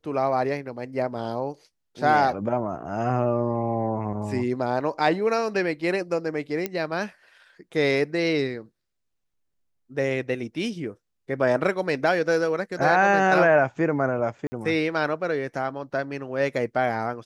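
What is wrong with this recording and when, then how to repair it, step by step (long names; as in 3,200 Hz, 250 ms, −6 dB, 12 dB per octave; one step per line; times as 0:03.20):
0:06.66: click −12 dBFS
0:14.47–0:14.52: drop-out 50 ms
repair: click removal
repair the gap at 0:14.47, 50 ms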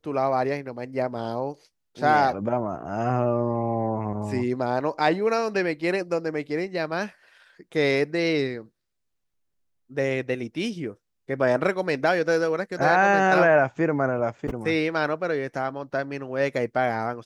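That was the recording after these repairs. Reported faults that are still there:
none of them is left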